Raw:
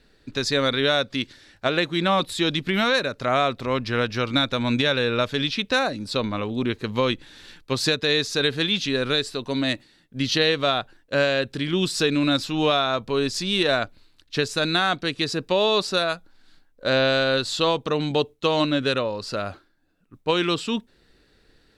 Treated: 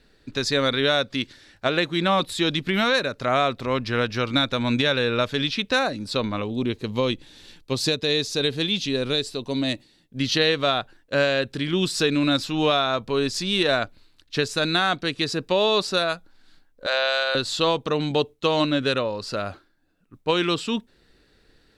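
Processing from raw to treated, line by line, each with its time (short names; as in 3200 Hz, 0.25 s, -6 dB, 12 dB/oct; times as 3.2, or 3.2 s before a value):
6.42–10.18 bell 1500 Hz -8 dB 1.1 oct
16.86–17.35 HPF 590 Hz 24 dB/oct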